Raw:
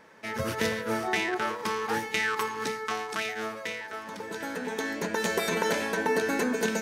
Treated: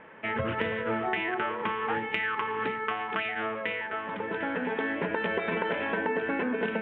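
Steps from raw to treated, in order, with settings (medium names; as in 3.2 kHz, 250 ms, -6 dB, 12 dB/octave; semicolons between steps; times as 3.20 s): steep low-pass 3.2 kHz 72 dB/octave; de-hum 72.75 Hz, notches 6; compression, threshold -31 dBFS, peak gain reduction 9.5 dB; trim +5 dB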